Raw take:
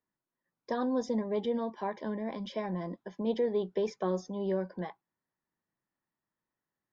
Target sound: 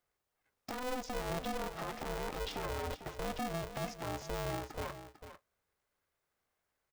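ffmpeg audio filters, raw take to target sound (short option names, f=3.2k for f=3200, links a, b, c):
-af "lowshelf=f=140:g=-8.5,acompressor=threshold=-37dB:ratio=6,alimiter=level_in=12.5dB:limit=-24dB:level=0:latency=1:release=107,volume=-12.5dB,aecho=1:1:448:0.266,aeval=exprs='val(0)*sgn(sin(2*PI*250*n/s))':c=same,volume=6dB"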